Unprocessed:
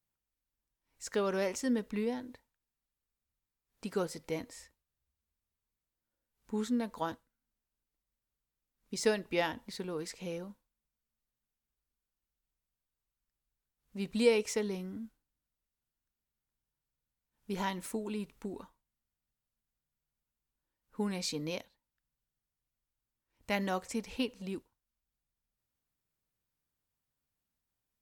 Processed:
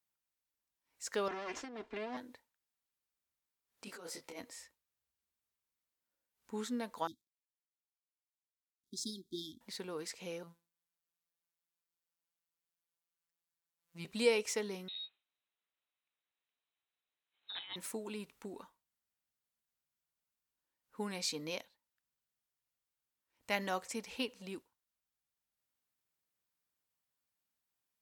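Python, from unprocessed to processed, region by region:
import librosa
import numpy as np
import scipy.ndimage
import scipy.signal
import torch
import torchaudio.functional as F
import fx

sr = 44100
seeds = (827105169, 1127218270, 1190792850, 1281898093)

y = fx.chain(x, sr, fx.lower_of_two(delay_ms=2.9),
    fx.over_compress(threshold_db=-38.0, ratio=-1.0),
    fx.air_absorb(metres=130.0), at=(1.28, 2.17))
y = fx.chain(y, sr, fx.peak_eq(hz=150.0, db=-9.0, octaves=0.55),
    fx.over_compress(threshold_db=-40.0, ratio=-1.0),
    fx.detune_double(cents=29), at=(3.84, 4.4))
y = fx.chain(y, sr, fx.law_mismatch(coded='A'),
    fx.brickwall_bandstop(low_hz=400.0, high_hz=3200.0),
    fx.high_shelf(hz=12000.0, db=-7.0), at=(7.07, 9.61))
y = fx.chain(y, sr, fx.hum_notches(base_hz=60, count=7),
    fx.robotise(hz=169.0), at=(10.43, 14.05))
y = fx.chain(y, sr, fx.highpass(hz=480.0, slope=6),
    fx.freq_invert(carrier_hz=4000),
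    fx.over_compress(threshold_db=-45.0, ratio=-1.0), at=(14.88, 17.76))
y = fx.highpass(y, sr, hz=110.0, slope=6)
y = fx.low_shelf(y, sr, hz=390.0, db=-8.5)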